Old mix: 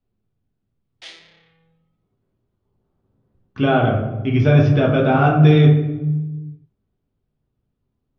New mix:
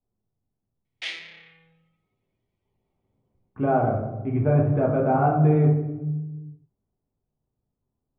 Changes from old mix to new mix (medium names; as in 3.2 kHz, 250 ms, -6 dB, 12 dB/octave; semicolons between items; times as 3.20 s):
speech: add four-pole ladder low-pass 1.1 kHz, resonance 35%; master: add peaking EQ 2.3 kHz +11 dB 1 oct